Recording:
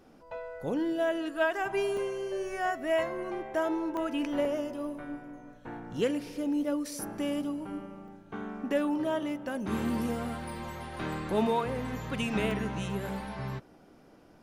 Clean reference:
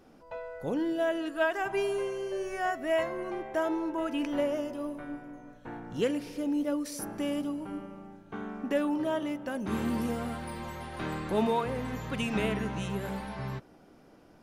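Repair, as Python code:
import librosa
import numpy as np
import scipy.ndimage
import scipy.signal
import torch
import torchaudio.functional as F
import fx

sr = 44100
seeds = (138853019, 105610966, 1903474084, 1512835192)

y = fx.fix_interpolate(x, sr, at_s=(1.97, 3.97, 4.45, 8.08, 10.79, 12.51), length_ms=2.0)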